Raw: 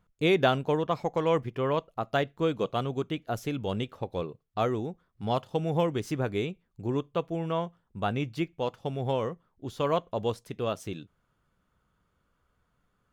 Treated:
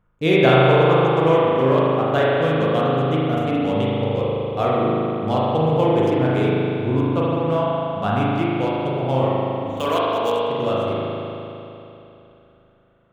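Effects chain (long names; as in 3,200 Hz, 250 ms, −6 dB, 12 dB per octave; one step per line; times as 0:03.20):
adaptive Wiener filter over 9 samples
0:09.77–0:10.42: RIAA equalisation recording
spring reverb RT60 3.1 s, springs 38 ms, chirp 40 ms, DRR −7 dB
level +3.5 dB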